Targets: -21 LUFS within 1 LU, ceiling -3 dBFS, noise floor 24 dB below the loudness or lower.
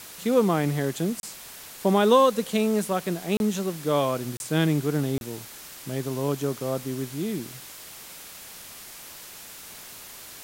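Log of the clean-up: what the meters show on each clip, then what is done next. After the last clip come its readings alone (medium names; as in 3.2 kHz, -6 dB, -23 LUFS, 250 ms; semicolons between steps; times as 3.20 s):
dropouts 4; longest dropout 31 ms; noise floor -43 dBFS; noise floor target -50 dBFS; loudness -25.5 LUFS; peak level -6.5 dBFS; loudness target -21.0 LUFS
-> interpolate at 1.20/3.37/4.37/5.18 s, 31 ms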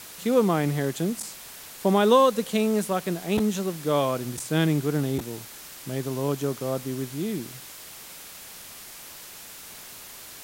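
dropouts 0; noise floor -43 dBFS; noise floor target -50 dBFS
-> noise reduction 7 dB, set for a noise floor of -43 dBFS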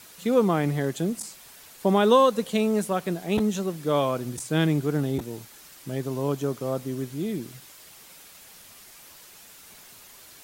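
noise floor -49 dBFS; noise floor target -50 dBFS
-> noise reduction 6 dB, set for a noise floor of -49 dBFS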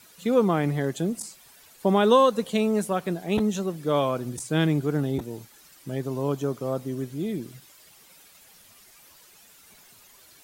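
noise floor -54 dBFS; loudness -25.5 LUFS; peak level -6.5 dBFS; loudness target -21.0 LUFS
-> trim +4.5 dB; peak limiter -3 dBFS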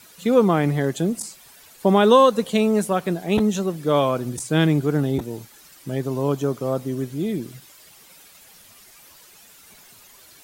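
loudness -21.0 LUFS; peak level -3.0 dBFS; noise floor -49 dBFS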